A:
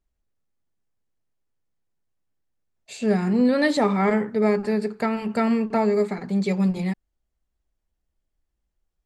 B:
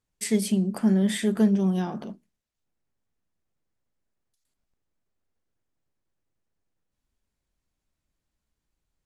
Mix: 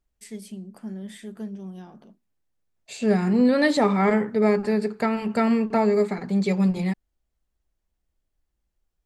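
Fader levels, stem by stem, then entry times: +0.5 dB, -14.0 dB; 0.00 s, 0.00 s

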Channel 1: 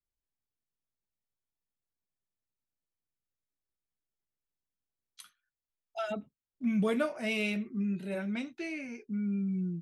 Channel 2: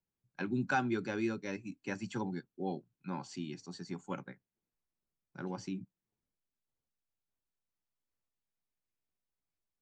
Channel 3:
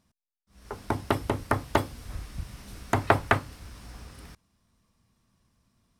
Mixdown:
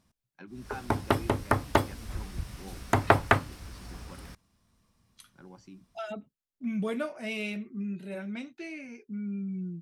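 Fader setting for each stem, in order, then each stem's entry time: -2.5 dB, -10.5 dB, +0.5 dB; 0.00 s, 0.00 s, 0.00 s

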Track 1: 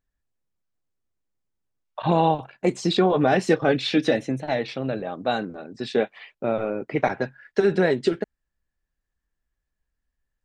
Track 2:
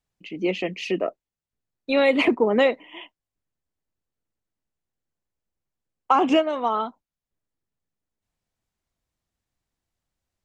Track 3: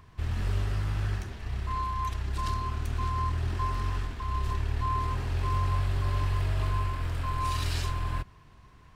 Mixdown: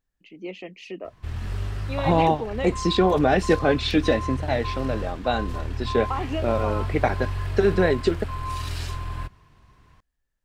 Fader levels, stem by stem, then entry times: 0.0 dB, -11.0 dB, -0.5 dB; 0.00 s, 0.00 s, 1.05 s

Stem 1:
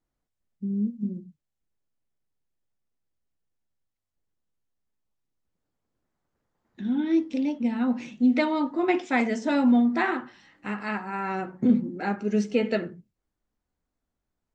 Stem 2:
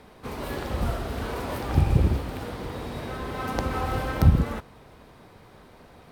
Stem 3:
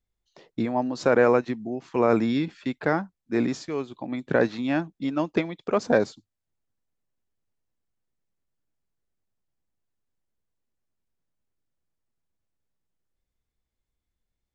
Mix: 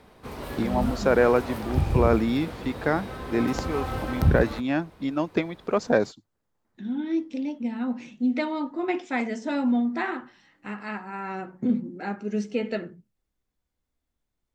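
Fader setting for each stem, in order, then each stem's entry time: -3.5 dB, -3.0 dB, -0.5 dB; 0.00 s, 0.00 s, 0.00 s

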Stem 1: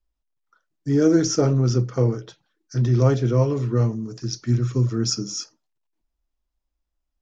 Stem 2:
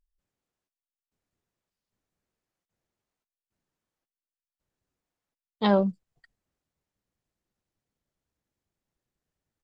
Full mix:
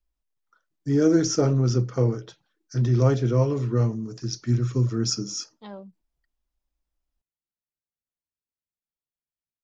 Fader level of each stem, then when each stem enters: -2.0 dB, -19.0 dB; 0.00 s, 0.00 s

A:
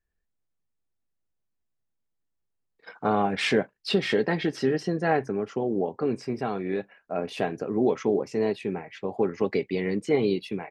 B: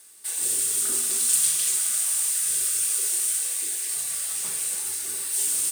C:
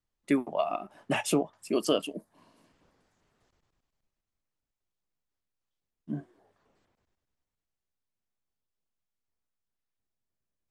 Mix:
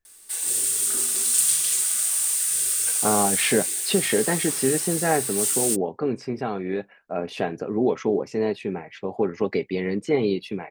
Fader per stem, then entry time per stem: +1.5 dB, +1.0 dB, mute; 0.00 s, 0.05 s, mute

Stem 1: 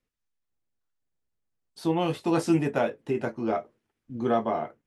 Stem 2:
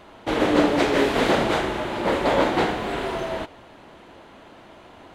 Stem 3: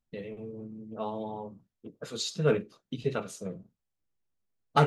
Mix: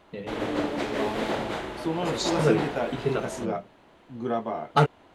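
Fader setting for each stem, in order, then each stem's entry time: -3.5 dB, -9.5 dB, +2.5 dB; 0.00 s, 0.00 s, 0.00 s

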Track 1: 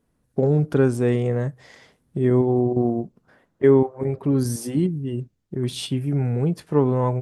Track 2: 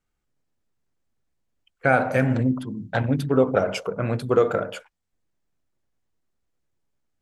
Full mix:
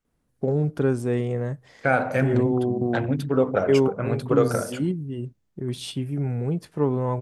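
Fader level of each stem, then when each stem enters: -4.0 dB, -2.0 dB; 0.05 s, 0.00 s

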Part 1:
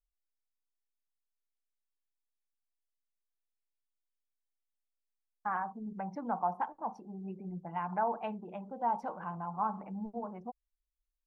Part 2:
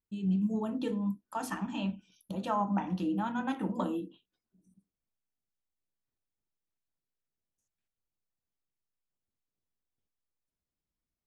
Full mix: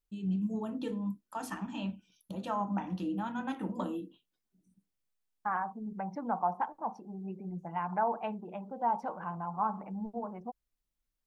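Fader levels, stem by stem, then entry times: +1.5 dB, -3.0 dB; 0.00 s, 0.00 s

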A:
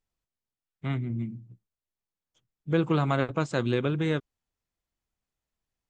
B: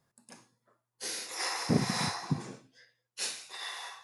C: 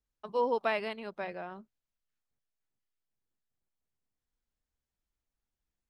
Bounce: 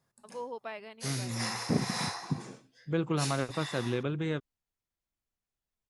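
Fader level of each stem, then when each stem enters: -5.5 dB, -1.5 dB, -10.5 dB; 0.20 s, 0.00 s, 0.00 s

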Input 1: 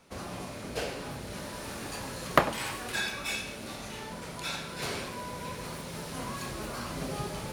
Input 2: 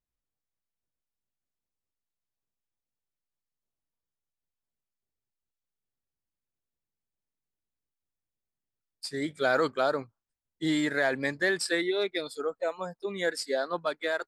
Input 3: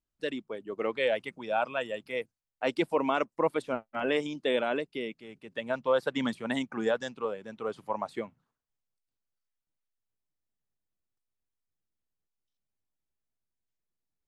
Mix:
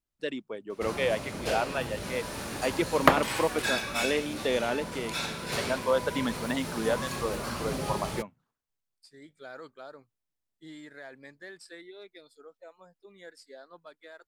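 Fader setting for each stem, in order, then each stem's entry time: +2.5 dB, -19.0 dB, 0.0 dB; 0.70 s, 0.00 s, 0.00 s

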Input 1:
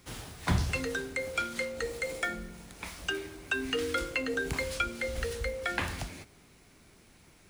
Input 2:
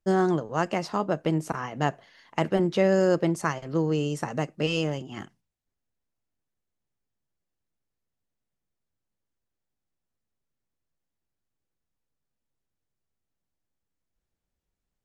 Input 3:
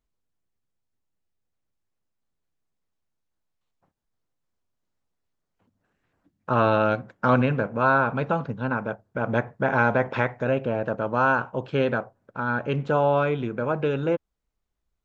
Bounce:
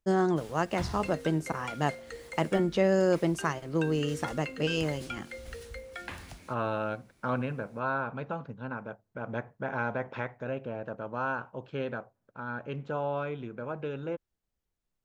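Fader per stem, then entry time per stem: -9.0 dB, -3.0 dB, -11.0 dB; 0.30 s, 0.00 s, 0.00 s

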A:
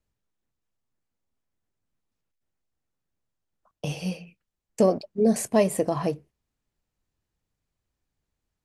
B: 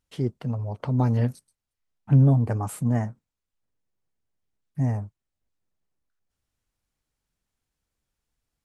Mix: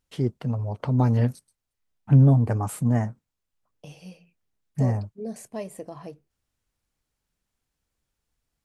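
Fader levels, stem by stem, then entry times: -13.5 dB, +1.5 dB; 0.00 s, 0.00 s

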